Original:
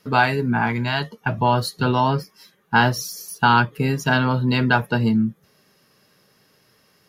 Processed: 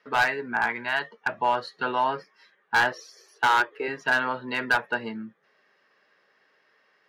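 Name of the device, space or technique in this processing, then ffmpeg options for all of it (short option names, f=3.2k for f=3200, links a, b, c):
megaphone: -filter_complex "[0:a]asettb=1/sr,asplit=3[a][b][c];[a]atrim=end=2.924[d];[b]atrim=start=2.92:end=3.88,asetpts=PTS-STARTPTS,afade=t=in:d=0.004:c=qsin,afade=t=out:st=0.956:d=0.004:c=qsin,lowshelf=f=260:t=q:w=3:g=-10.5[e];[c]atrim=start=3.876[f];[d][e]acrossfade=d=0.004:c1=hsin:c2=qsin[g];[g][f]acrossfade=d=0.004:c1=qsin:c2=hsin,highpass=480,lowpass=2.8k,equalizer=f=1.8k:t=o:w=0.45:g=7,asoftclip=type=hard:threshold=-11.5dB,volume=-3.5dB"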